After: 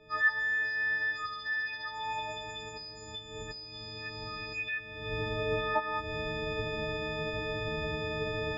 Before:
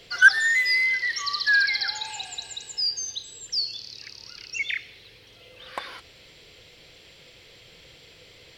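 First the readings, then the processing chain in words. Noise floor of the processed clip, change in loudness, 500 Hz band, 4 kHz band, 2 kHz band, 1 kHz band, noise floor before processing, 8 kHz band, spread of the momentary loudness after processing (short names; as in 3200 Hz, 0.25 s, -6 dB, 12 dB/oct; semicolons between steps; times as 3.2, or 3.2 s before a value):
-46 dBFS, -10.5 dB, +16.0 dB, -11.5 dB, -9.5 dB, +3.0 dB, -52 dBFS, -20.0 dB, 13 LU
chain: frequency quantiser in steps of 6 st; recorder AGC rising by 53 dB/s; LPF 1100 Hz 12 dB/oct; low shelf 170 Hz +4.5 dB; gain -7 dB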